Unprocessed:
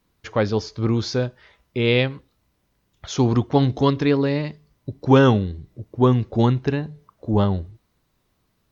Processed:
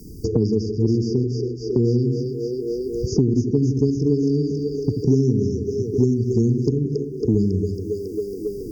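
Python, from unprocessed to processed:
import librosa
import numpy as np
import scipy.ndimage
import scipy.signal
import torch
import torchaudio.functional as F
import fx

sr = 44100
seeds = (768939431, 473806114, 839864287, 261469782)

y = fx.brickwall_bandstop(x, sr, low_hz=470.0, high_hz=4600.0)
y = fx.echo_split(y, sr, split_hz=390.0, low_ms=82, high_ms=275, feedback_pct=52, wet_db=-6)
y = fx.band_squash(y, sr, depth_pct=100)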